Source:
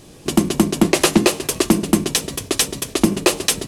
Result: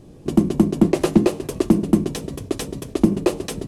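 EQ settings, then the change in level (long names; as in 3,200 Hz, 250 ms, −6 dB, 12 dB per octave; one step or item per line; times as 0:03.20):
tilt shelving filter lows +8.5 dB, about 940 Hz
−7.0 dB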